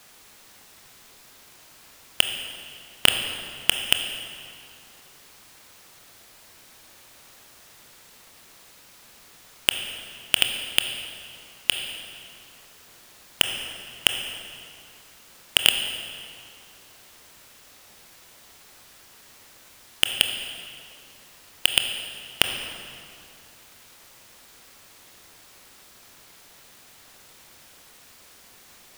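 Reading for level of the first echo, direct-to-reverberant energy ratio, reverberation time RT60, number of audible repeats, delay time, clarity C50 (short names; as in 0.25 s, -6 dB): none, 5.0 dB, 2.4 s, none, none, 6.0 dB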